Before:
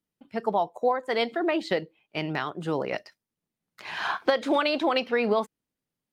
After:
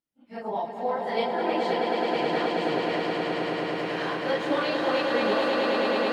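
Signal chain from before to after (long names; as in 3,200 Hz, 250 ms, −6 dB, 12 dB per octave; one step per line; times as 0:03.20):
random phases in long frames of 100 ms
mains-hum notches 50/100/150 Hz
echo that builds up and dies away 107 ms, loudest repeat 8, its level −5 dB
level −5 dB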